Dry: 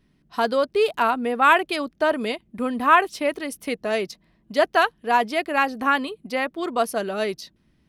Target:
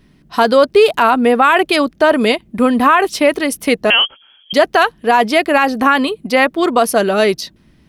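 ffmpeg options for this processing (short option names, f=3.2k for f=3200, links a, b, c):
-filter_complex "[0:a]asettb=1/sr,asplit=3[a][b][c];[a]atrim=end=3.904[d];[b]atrim=start=3.9:end=4.53,asetpts=PTS-STARTPTS,afade=t=in:d=0.004:c=qsin,afade=t=out:st=0.626:d=0.004:c=qsin,lowpass=f=2.9k:t=q:w=0.5098,lowpass=f=2.9k:t=q:w=0.6013,lowpass=f=2.9k:t=q:w=0.9,lowpass=f=2.9k:t=q:w=2.563,afreqshift=-3400[e];[c]atrim=start=4.526[f];[d][e]acrossfade=d=0.004:c1=hsin:c2=qsin[g];[g][f]acrossfade=d=0.004:c1=qsin:c2=hsin,alimiter=level_in=14dB:limit=-1dB:release=50:level=0:latency=1,volume=-1dB"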